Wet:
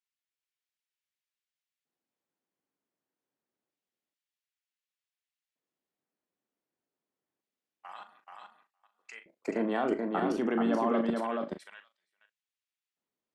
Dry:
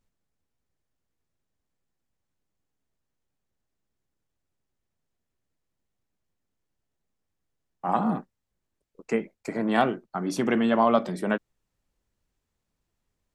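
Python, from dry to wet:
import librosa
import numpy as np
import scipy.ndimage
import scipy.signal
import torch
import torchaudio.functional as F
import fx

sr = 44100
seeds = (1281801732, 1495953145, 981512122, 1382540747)

y = fx.dynamic_eq(x, sr, hz=2300.0, q=4.3, threshold_db=-47.0, ratio=4.0, max_db=-4)
y = y + 10.0 ** (-22.5 / 20.0) * np.pad(y, (int(471 * sr / 1000.0), 0))[:len(y)]
y = fx.filter_lfo_highpass(y, sr, shape='square', hz=0.27, low_hz=280.0, high_hz=2600.0, q=1.1)
y = fx.level_steps(y, sr, step_db=16)
y = fx.high_shelf(y, sr, hz=4400.0, db=-11.0)
y = fx.doubler(y, sr, ms=39.0, db=-10.5)
y = y + 10.0 ** (-3.5 / 20.0) * np.pad(y, (int(431 * sr / 1000.0), 0))[:len(y)]
y = y * 10.0 ** (3.0 / 20.0)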